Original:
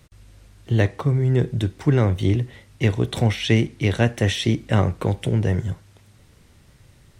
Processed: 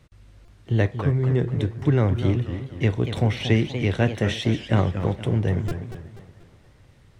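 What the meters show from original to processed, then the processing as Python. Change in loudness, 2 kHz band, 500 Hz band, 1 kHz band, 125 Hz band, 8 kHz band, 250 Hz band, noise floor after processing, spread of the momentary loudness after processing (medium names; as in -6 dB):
-2.0 dB, -2.5 dB, -1.5 dB, -1.5 dB, -1.5 dB, no reading, -1.5 dB, -54 dBFS, 6 LU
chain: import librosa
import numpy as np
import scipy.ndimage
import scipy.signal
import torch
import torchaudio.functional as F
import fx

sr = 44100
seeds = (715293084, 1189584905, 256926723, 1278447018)

y = fx.high_shelf(x, sr, hz=5900.0, db=-11.0)
y = fx.echo_wet_bandpass(y, sr, ms=293, feedback_pct=62, hz=1200.0, wet_db=-21.0)
y = fx.buffer_glitch(y, sr, at_s=(0.45, 1.79, 5.0, 5.68), block=128, repeats=10)
y = fx.echo_warbled(y, sr, ms=240, feedback_pct=42, rate_hz=2.8, cents=212, wet_db=-9.5)
y = y * librosa.db_to_amplitude(-2.0)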